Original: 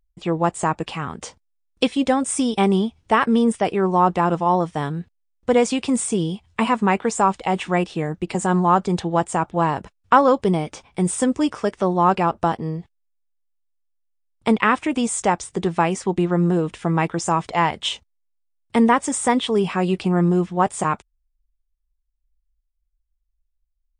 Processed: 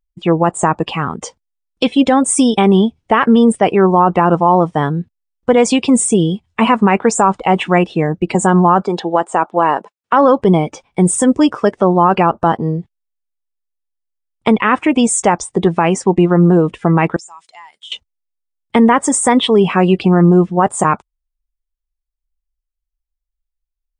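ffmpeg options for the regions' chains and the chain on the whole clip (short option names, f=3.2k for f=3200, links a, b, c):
-filter_complex "[0:a]asettb=1/sr,asplit=3[a][b][c];[a]atrim=end=8.824[d];[b]atrim=start=8.82:end=10.13,asetpts=PTS-STARTPTS,afade=t=in:d=0.004:c=qsin,afade=t=out:st=1.306:d=0.004:c=qsin,highpass=330,acrossover=split=5700[e][f];[f]acompressor=threshold=-40dB:ratio=4:attack=1:release=60[g];[e][g]amix=inputs=2:normalize=0[h];[c]atrim=start=10.126[i];[d][h]acrossfade=d=0.004:c1=hsin:c2=qsin[j];[j][i]acrossfade=d=0.004:c1=qsin:c2=hsin,asettb=1/sr,asplit=3[k][l][m];[k]atrim=end=17.164[n];[l]atrim=start=17.16:end=17.92,asetpts=PTS-STARTPTS,afade=t=in:d=0.004:c=qsin,afade=t=out:st=0.756:d=0.004:c=qsin,aderivative,acompressor=threshold=-39dB:ratio=4:attack=3.2:release=140:knee=1:detection=peak[o];[m]atrim=start=17.916[p];[n][o]acrossfade=d=0.004:c1=hsin:c2=qsin[q];[q][p]acrossfade=d=0.004:c1=qsin:c2=hsin,afftdn=nr=15:nf=-36,equalizer=f=74:t=o:w=1:g=-6,alimiter=level_in=10.5dB:limit=-1dB:release=50:level=0:latency=1,volume=-1dB"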